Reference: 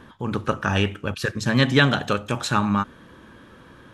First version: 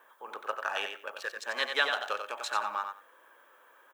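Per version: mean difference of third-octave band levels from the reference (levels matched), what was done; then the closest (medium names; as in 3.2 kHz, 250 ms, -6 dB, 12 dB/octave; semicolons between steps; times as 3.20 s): 11.5 dB: local Wiener filter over 9 samples; high-pass 560 Hz 24 dB/octave; added noise violet -65 dBFS; feedback delay 91 ms, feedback 17%, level -6.5 dB; trim -7.5 dB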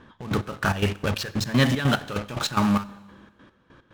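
6.5 dB: low-pass 6.2 kHz 12 dB/octave; in parallel at -8 dB: fuzz box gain 38 dB, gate -35 dBFS; on the sum: trance gate "xx.x..x.x.xx.x." 146 bpm -12 dB; Schroeder reverb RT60 1.3 s, combs from 31 ms, DRR 18.5 dB; trim -4 dB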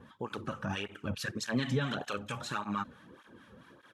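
4.0 dB: peak limiter -13.5 dBFS, peak gain reduction 10 dB; harmonic tremolo 4.5 Hz, depth 70%, crossover 900 Hz; speakerphone echo 390 ms, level -30 dB; cancelling through-zero flanger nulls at 1.7 Hz, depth 3.3 ms; trim -2.5 dB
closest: third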